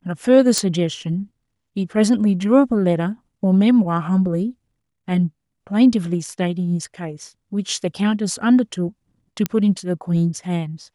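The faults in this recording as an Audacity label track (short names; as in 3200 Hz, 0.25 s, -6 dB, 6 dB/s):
0.580000	0.580000	pop -4 dBFS
9.460000	9.460000	pop -5 dBFS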